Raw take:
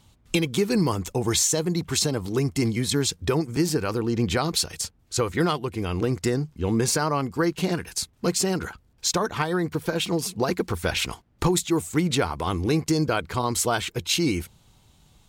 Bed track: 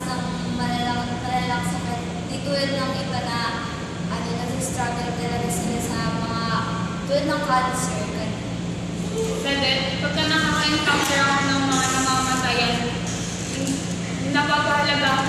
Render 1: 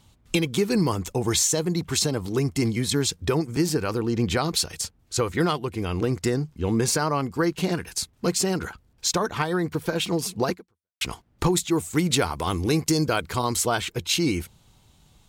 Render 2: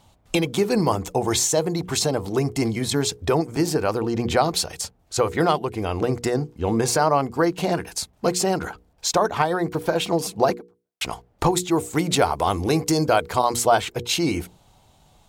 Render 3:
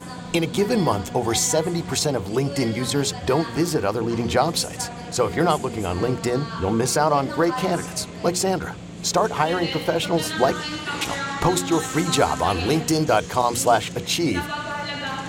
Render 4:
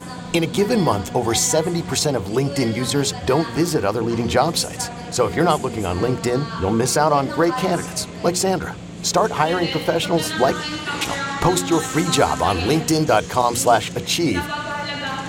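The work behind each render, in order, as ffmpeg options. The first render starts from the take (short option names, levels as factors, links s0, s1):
-filter_complex "[0:a]asettb=1/sr,asplit=3[s0][s1][s2];[s0]atrim=end=11.944[s3];[s1]atrim=start=11.94:end=13.56,asetpts=PTS-STARTPTS,afade=t=in:d=0.004:c=qsin,afade=t=out:st=1.616:d=0.004:c=qsin,highshelf=f=4900:g=8[s4];[s2]atrim=start=13.556[s5];[s3][s4]acrossfade=d=0.004:c1=hsin:c2=qsin[s6];[s6][s5]acrossfade=d=0.004:c1=qsin:c2=hsin,asplit=2[s7][s8];[s7]atrim=end=11.01,asetpts=PTS-STARTPTS,afade=t=out:st=10.5:d=0.51:c=exp[s9];[s8]atrim=start=11.01,asetpts=PTS-STARTPTS,afade=t=in:d=0.004:c=hsin[s10];[s9][s10]concat=n=2:v=0:a=1"
-af "equalizer=f=700:w=1.3:g=10.5,bandreject=f=60:t=h:w=6,bandreject=f=120:t=h:w=6,bandreject=f=180:t=h:w=6,bandreject=f=240:t=h:w=6,bandreject=f=300:t=h:w=6,bandreject=f=360:t=h:w=6,bandreject=f=420:t=h:w=6,bandreject=f=480:t=h:w=6"
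-filter_complex "[1:a]volume=0.355[s0];[0:a][s0]amix=inputs=2:normalize=0"
-af "volume=1.33,alimiter=limit=0.708:level=0:latency=1"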